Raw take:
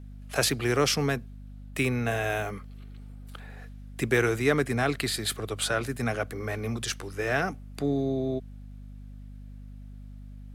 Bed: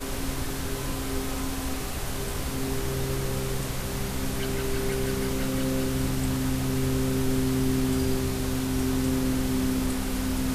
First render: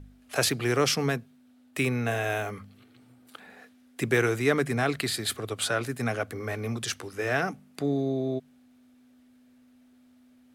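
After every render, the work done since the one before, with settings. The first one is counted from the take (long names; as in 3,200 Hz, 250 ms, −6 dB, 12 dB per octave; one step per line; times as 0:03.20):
hum removal 50 Hz, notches 4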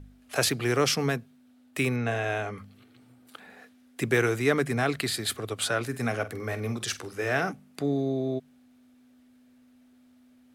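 0:01.96–0:02.58: high-frequency loss of the air 68 metres
0:05.88–0:07.52: flutter between parallel walls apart 8 metres, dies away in 0.21 s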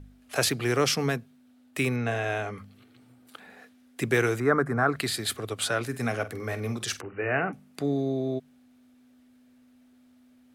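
0:04.40–0:04.96: high shelf with overshoot 2,000 Hz −13 dB, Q 3
0:07.01–0:07.53: linear-phase brick-wall low-pass 3,000 Hz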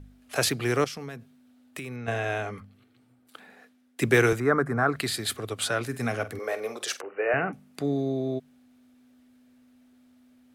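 0:00.84–0:02.08: downward compressor 16 to 1, threshold −33 dBFS
0:02.60–0:04.33: multiband upward and downward expander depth 40%
0:06.39–0:07.34: high-pass with resonance 510 Hz, resonance Q 2.1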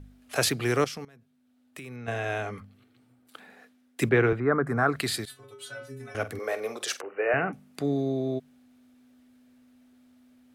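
0:01.05–0:02.54: fade in, from −18 dB
0:04.09–0:04.67: high-frequency loss of the air 420 metres
0:05.25–0:06.15: stiff-string resonator 130 Hz, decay 0.64 s, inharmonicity 0.008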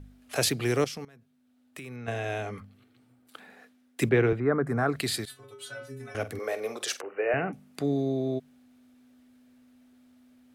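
dynamic equaliser 1,300 Hz, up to −6 dB, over −39 dBFS, Q 1.2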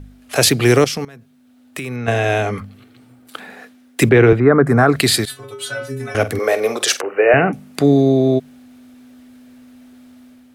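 automatic gain control gain up to 5 dB
boost into a limiter +10 dB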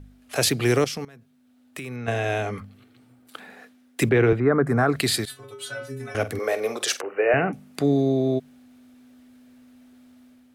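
level −8 dB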